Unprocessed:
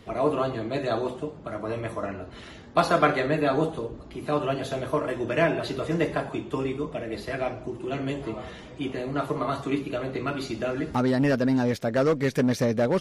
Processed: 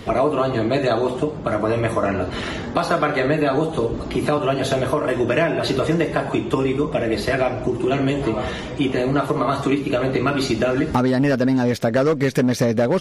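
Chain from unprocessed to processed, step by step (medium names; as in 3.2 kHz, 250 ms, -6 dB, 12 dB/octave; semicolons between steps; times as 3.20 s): compression 5:1, threshold -30 dBFS, peak gain reduction 13.5 dB; loudness maximiser +20 dB; 2.05–4.38 s: three bands compressed up and down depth 40%; trim -6 dB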